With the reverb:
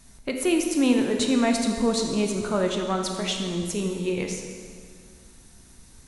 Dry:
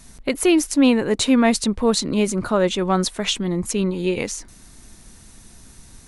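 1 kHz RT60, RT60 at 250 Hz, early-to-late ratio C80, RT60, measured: 1.9 s, 2.1 s, 5.5 dB, 2.0 s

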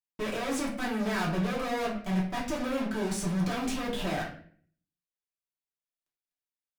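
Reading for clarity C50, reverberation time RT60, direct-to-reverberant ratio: 6.5 dB, 0.50 s, -4.5 dB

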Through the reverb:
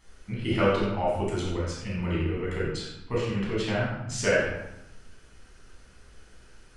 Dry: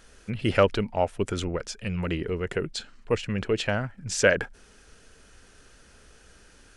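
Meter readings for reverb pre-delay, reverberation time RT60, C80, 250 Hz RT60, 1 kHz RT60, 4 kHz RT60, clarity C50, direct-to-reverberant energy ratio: 13 ms, 0.90 s, 3.0 dB, 1.0 s, 0.95 s, 0.65 s, -0.5 dB, -6.5 dB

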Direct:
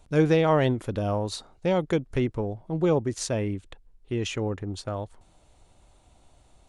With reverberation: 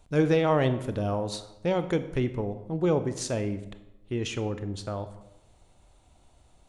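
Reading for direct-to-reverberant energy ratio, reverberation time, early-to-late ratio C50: 10.5 dB, 0.90 s, 13.0 dB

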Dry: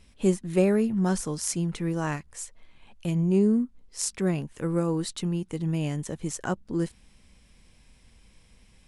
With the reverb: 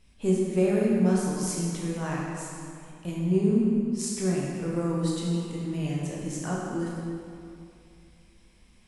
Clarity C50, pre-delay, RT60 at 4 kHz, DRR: -1.5 dB, 14 ms, 1.8 s, -4.5 dB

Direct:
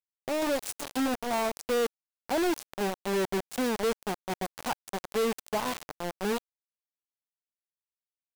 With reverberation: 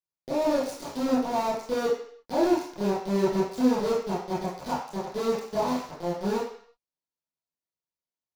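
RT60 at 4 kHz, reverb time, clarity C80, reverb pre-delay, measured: 0.60 s, 0.55 s, 6.5 dB, 23 ms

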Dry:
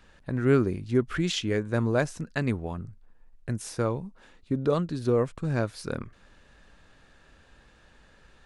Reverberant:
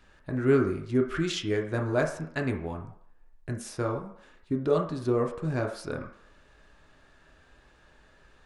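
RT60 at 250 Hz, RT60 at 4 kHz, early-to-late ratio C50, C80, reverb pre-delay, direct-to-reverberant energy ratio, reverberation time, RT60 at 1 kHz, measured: 0.45 s, 0.65 s, 8.5 dB, 11.5 dB, 3 ms, 1.5 dB, 0.65 s, 0.65 s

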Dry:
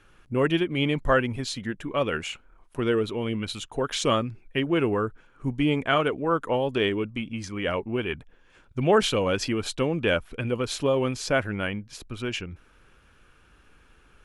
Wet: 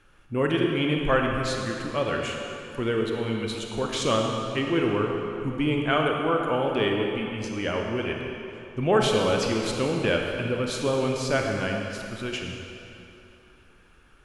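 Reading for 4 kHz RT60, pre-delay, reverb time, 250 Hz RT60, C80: 2.3 s, 29 ms, 2.9 s, 2.7 s, 2.5 dB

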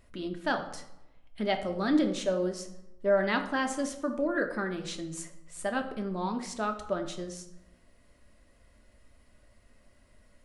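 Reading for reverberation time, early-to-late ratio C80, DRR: 0.90 s, 13.0 dB, 4.5 dB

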